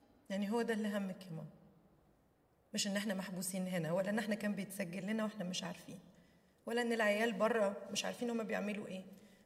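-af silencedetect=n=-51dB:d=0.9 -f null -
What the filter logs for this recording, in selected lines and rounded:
silence_start: 1.50
silence_end: 2.73 | silence_duration: 1.24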